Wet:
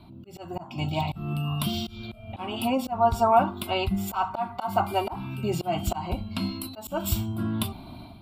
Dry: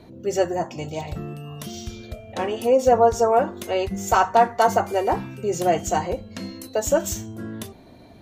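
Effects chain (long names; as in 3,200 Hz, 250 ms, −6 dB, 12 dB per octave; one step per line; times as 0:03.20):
automatic gain control gain up to 9.5 dB
phaser with its sweep stopped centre 1,800 Hz, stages 6
volume swells 257 ms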